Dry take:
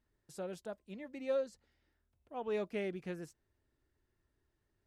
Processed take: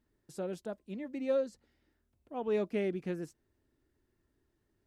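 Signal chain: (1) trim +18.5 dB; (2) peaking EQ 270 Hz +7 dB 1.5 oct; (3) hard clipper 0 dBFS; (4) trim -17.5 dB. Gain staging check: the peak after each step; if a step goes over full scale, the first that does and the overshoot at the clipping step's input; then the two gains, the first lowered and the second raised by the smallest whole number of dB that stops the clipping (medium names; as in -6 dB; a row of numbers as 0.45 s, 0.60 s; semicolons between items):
-7.0 dBFS, -4.0 dBFS, -4.0 dBFS, -21.5 dBFS; nothing clips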